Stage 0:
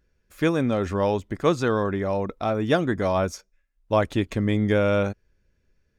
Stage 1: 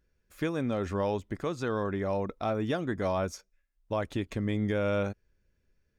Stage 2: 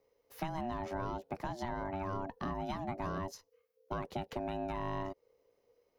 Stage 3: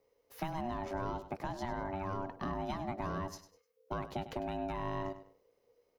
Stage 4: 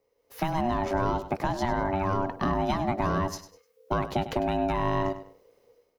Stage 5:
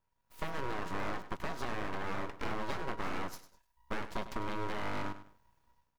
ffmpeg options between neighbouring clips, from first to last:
-af "alimiter=limit=-15dB:level=0:latency=1:release=244,volume=-5dB"
-filter_complex "[0:a]aexciter=amount=1.3:drive=2:freq=4.4k,aeval=exprs='val(0)*sin(2*PI*480*n/s)':c=same,acrossover=split=120|840[a][b][c];[a]acompressor=threshold=-48dB:ratio=4[d];[b]acompressor=threshold=-39dB:ratio=4[e];[c]acompressor=threshold=-47dB:ratio=4[f];[d][e][f]amix=inputs=3:normalize=0,volume=1.5dB"
-af "aecho=1:1:100|200|300:0.224|0.0627|0.0176"
-af "dynaudnorm=f=140:g=5:m=11dB"
-af "aeval=exprs='abs(val(0))':c=same,volume=-7.5dB"

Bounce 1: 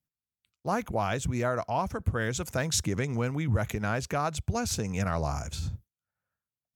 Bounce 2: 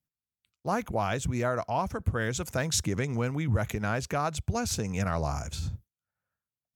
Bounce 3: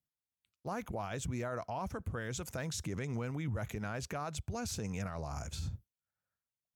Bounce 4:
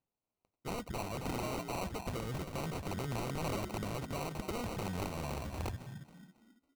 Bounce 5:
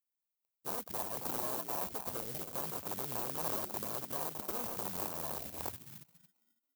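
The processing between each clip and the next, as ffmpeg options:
-af anull
-af "alimiter=level_in=0.5dB:limit=-24dB:level=0:latency=1:release=32,volume=-0.5dB,volume=-5.5dB"
-filter_complex "[0:a]asplit=5[a][b][c][d][e];[b]adelay=274,afreqshift=48,volume=-8.5dB[f];[c]adelay=548,afreqshift=96,volume=-17.6dB[g];[d]adelay=822,afreqshift=144,volume=-26.7dB[h];[e]adelay=1096,afreqshift=192,volume=-35.9dB[i];[a][f][g][h][i]amix=inputs=5:normalize=0,acrossover=split=6700[j][k];[j]aeval=exprs='(mod(35.5*val(0)+1,2)-1)/35.5':c=same[l];[l][k]amix=inputs=2:normalize=0,acrusher=samples=26:mix=1:aa=0.000001"
-af "afwtdn=0.01,acrusher=bits=4:mode=log:mix=0:aa=0.000001,aemphasis=mode=production:type=riaa"

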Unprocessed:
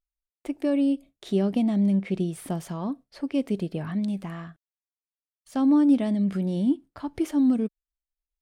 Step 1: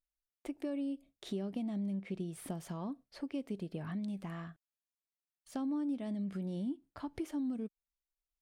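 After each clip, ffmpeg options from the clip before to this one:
-af "acompressor=threshold=-32dB:ratio=3,volume=-5.5dB"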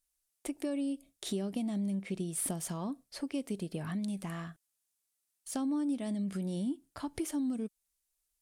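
-af "equalizer=f=9.8k:t=o:w=1.6:g=14.5,volume=3dB"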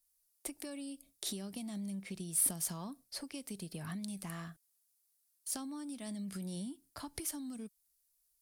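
-filter_complex "[0:a]acrossover=split=170|870[a][b][c];[b]acompressor=threshold=-44dB:ratio=6[d];[a][d][c]amix=inputs=3:normalize=0,aexciter=amount=1.9:drive=5.4:freq=4.2k,volume=-2.5dB"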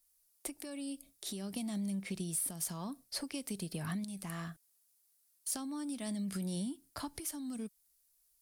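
-af "alimiter=level_in=5dB:limit=-24dB:level=0:latency=1:release=289,volume=-5dB,volume=4dB"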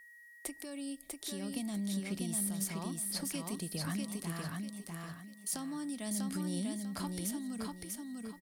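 -filter_complex "[0:a]aeval=exprs='val(0)+0.002*sin(2*PI*1900*n/s)':c=same,asplit=2[a][b];[b]aecho=0:1:645|1290|1935|2580:0.708|0.212|0.0637|0.0191[c];[a][c]amix=inputs=2:normalize=0"

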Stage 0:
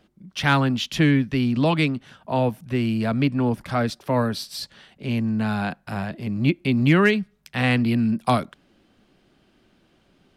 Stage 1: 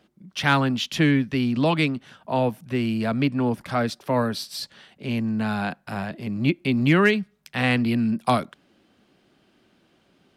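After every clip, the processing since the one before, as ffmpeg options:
-af "highpass=f=130:p=1"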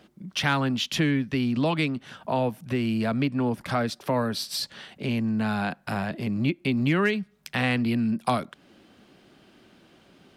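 -af "acompressor=threshold=-35dB:ratio=2,volume=6dB"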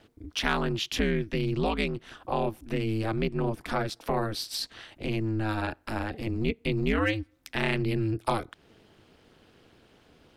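-af "aeval=exprs='val(0)*sin(2*PI*110*n/s)':c=same"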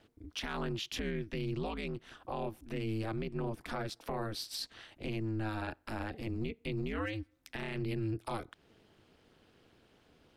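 -af "alimiter=limit=-20.5dB:level=0:latency=1:release=40,volume=-6.5dB"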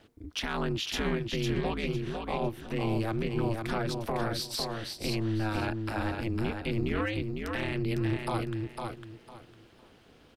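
-af "aecho=1:1:504|1008|1512:0.596|0.143|0.0343,volume=5.5dB"

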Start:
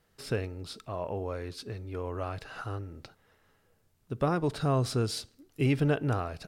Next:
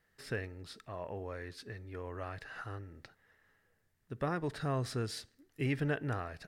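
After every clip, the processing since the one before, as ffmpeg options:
-af "equalizer=f=1.8k:t=o:w=0.4:g=12.5,volume=-7.5dB"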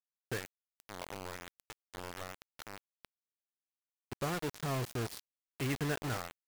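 -af "acrusher=bits=5:mix=0:aa=0.000001,volume=-2dB"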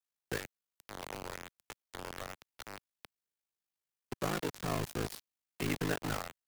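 -filter_complex "[0:a]aeval=exprs='val(0)*sin(2*PI*26*n/s)':c=same,acrossover=split=150|920[a][b][c];[a]aeval=exprs='clip(val(0),-1,0.00119)':c=same[d];[d][b][c]amix=inputs=3:normalize=0,volume=4dB"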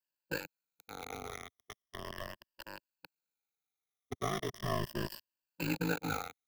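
-af "afftfilt=real='re*pow(10,17/40*sin(2*PI*(1.3*log(max(b,1)*sr/1024/100)/log(2)-(-0.38)*(pts-256)/sr)))':imag='im*pow(10,17/40*sin(2*PI*(1.3*log(max(b,1)*sr/1024/100)/log(2)-(-0.38)*(pts-256)/sr)))':win_size=1024:overlap=0.75,equalizer=f=8.6k:w=3.4:g=-10.5,volume=-3.5dB"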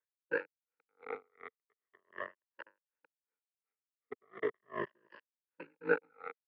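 -af "highpass=350,equalizer=f=460:t=q:w=4:g=9,equalizer=f=710:t=q:w=4:g=-9,equalizer=f=1.3k:t=q:w=4:g=3,equalizer=f=1.9k:t=q:w=4:g=5,lowpass=f=2.1k:w=0.5412,lowpass=f=2.1k:w=1.3066,aeval=exprs='val(0)*pow(10,-40*(0.5-0.5*cos(2*PI*2.7*n/s))/20)':c=same,volume=4dB"

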